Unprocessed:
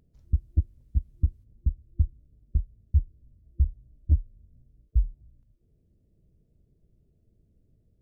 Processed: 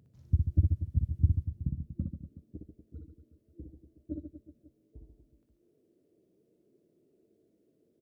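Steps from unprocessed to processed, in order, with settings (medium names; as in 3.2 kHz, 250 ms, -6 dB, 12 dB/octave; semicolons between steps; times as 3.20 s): high-pass sweep 110 Hz -> 340 Hz, 1.33–2.66 s; reverse bouncing-ball echo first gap 60 ms, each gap 1.3×, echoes 5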